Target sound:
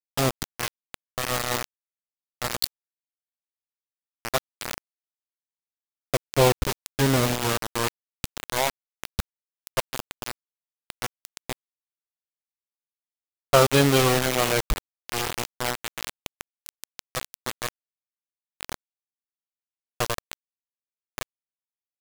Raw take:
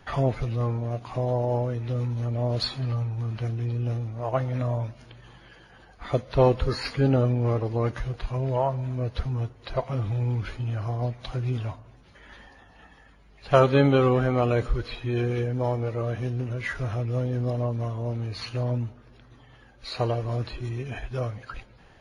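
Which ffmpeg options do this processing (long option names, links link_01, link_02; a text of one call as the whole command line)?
ffmpeg -i in.wav -af "aeval=exprs='val(0)*gte(abs(val(0)),0.0944)':channel_layout=same,highshelf=frequency=2400:gain=9" out.wav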